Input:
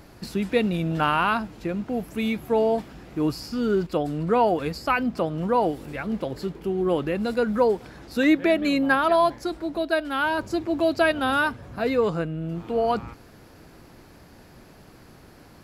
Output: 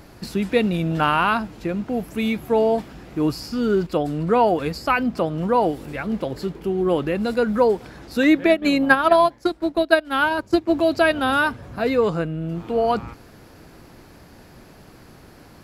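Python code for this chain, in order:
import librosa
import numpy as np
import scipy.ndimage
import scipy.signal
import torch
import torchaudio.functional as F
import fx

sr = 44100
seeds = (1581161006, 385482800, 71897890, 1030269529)

y = fx.transient(x, sr, attack_db=7, sustain_db=-12, at=(8.44, 10.73))
y = F.gain(torch.from_numpy(y), 3.0).numpy()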